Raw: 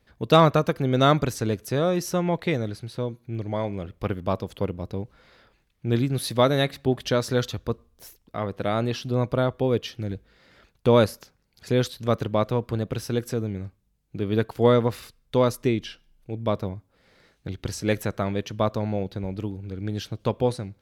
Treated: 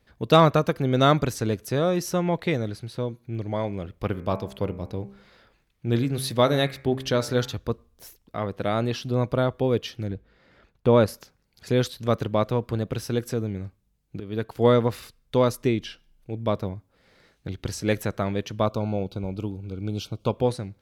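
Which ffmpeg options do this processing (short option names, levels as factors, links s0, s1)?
-filter_complex "[0:a]asplit=3[s0][s1][s2];[s0]afade=t=out:st=4.13:d=0.02[s3];[s1]bandreject=f=66.27:t=h:w=4,bandreject=f=132.54:t=h:w=4,bandreject=f=198.81:t=h:w=4,bandreject=f=265.08:t=h:w=4,bandreject=f=331.35:t=h:w=4,bandreject=f=397.62:t=h:w=4,bandreject=f=463.89:t=h:w=4,bandreject=f=530.16:t=h:w=4,bandreject=f=596.43:t=h:w=4,bandreject=f=662.7:t=h:w=4,bandreject=f=728.97:t=h:w=4,bandreject=f=795.24:t=h:w=4,bandreject=f=861.51:t=h:w=4,bandreject=f=927.78:t=h:w=4,bandreject=f=994.05:t=h:w=4,bandreject=f=1060.32:t=h:w=4,bandreject=f=1126.59:t=h:w=4,bandreject=f=1192.86:t=h:w=4,bandreject=f=1259.13:t=h:w=4,bandreject=f=1325.4:t=h:w=4,bandreject=f=1391.67:t=h:w=4,bandreject=f=1457.94:t=h:w=4,bandreject=f=1524.21:t=h:w=4,bandreject=f=1590.48:t=h:w=4,bandreject=f=1656.75:t=h:w=4,bandreject=f=1723.02:t=h:w=4,bandreject=f=1789.29:t=h:w=4,bandreject=f=1855.56:t=h:w=4,bandreject=f=1921.83:t=h:w=4,bandreject=f=1988.1:t=h:w=4,bandreject=f=2054.37:t=h:w=4,bandreject=f=2120.64:t=h:w=4,bandreject=f=2186.91:t=h:w=4,bandreject=f=2253.18:t=h:w=4,bandreject=f=2319.45:t=h:w=4,bandreject=f=2385.72:t=h:w=4,bandreject=f=2451.99:t=h:w=4,bandreject=f=2518.26:t=h:w=4,afade=t=in:st=4.13:d=0.02,afade=t=out:st=7.56:d=0.02[s4];[s2]afade=t=in:st=7.56:d=0.02[s5];[s3][s4][s5]amix=inputs=3:normalize=0,asettb=1/sr,asplit=3[s6][s7][s8];[s6]atrim=end=10.084[s9];[s7]atrim=start=10.08:end=11.08,asetpts=PTS-STARTPTS,afade=t=in:d=0.004:c=qsin,afade=t=out:st=0.996:d=0.004:c=qsin,highshelf=f=3300:g=-11[s10];[s8]atrim=start=11.076[s11];[s9][s10]acrossfade=d=0.004:c1=hsin:c2=qsin[s12];[s12][s11]acrossfade=d=0.004:c1=qsin:c2=hsin,asettb=1/sr,asplit=3[s13][s14][s15];[s13]atrim=end=18.664[s16];[s14]atrim=start=18.66:end=20.37,asetpts=PTS-STARTPTS,afade=t=in:d=0.004:c=qsin,afade=t=out:st=1.706:d=0.004:c=qsin,asuperstop=centerf=1800:order=12:qfactor=2.8[s17];[s15]atrim=start=20.366[s18];[s16][s17]acrossfade=d=0.004:c1=hsin:c2=qsin[s19];[s19][s18]acrossfade=d=0.004:c1=qsin:c2=hsin,asplit=2[s20][s21];[s20]atrim=end=14.2,asetpts=PTS-STARTPTS,afade=t=out:st=14.196:d=0.004:c=hsin:silence=0.237137[s22];[s21]atrim=start=14.2,asetpts=PTS-STARTPTS,afade=t=in:d=0.48:silence=0.237137[s23];[s22][s23]concat=n=2:v=0:a=1"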